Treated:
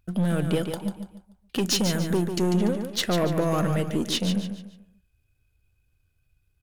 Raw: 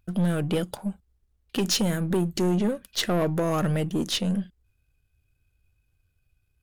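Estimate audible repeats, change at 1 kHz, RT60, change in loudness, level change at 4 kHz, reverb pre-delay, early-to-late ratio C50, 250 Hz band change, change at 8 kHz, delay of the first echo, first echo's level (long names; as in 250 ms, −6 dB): 4, +1.0 dB, no reverb audible, +0.5 dB, +1.0 dB, no reverb audible, no reverb audible, +0.5 dB, +1.0 dB, 145 ms, −7.5 dB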